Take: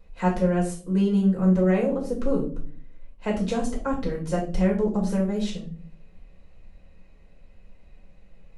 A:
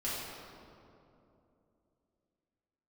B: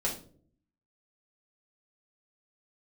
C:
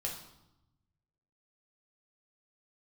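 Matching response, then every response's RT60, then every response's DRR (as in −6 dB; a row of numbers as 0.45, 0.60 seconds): B; 2.8 s, non-exponential decay, 0.90 s; −10.0, −3.5, −1.5 decibels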